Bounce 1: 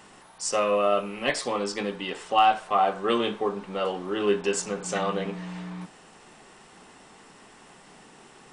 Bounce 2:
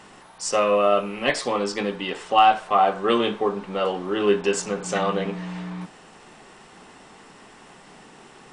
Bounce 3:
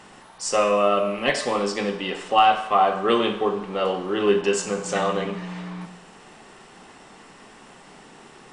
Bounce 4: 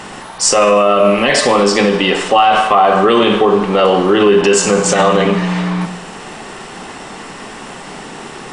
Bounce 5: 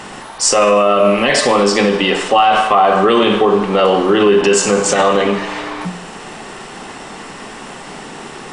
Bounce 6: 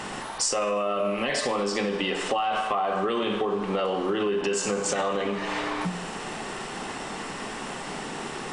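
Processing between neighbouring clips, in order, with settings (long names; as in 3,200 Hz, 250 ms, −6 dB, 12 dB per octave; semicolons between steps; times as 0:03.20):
high-shelf EQ 8,900 Hz −8 dB; level +4 dB
four-comb reverb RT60 0.83 s, combs from 28 ms, DRR 8.5 dB
boost into a limiter +18 dB; level −1 dB
mains-hum notches 60/120/180 Hz; level −1 dB
downward compressor 5 to 1, threshold −21 dBFS, peak gain reduction 12.5 dB; level −3.5 dB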